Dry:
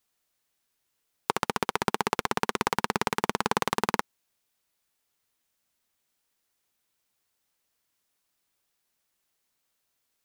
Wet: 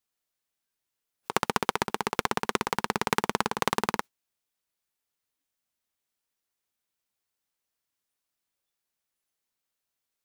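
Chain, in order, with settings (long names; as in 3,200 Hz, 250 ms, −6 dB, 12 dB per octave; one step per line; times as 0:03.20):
noise reduction from a noise print of the clip's start 15 dB
compressor whose output falls as the input rises −29 dBFS, ratio −0.5
level +3.5 dB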